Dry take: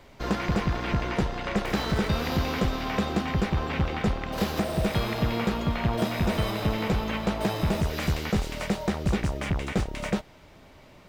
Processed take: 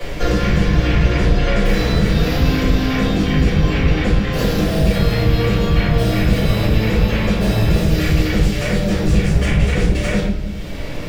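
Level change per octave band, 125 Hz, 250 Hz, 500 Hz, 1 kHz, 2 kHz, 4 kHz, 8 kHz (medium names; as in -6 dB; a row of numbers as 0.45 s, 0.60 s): +12.5 dB, +10.0 dB, +9.5 dB, +4.0 dB, +9.5 dB, +9.5 dB, +9.0 dB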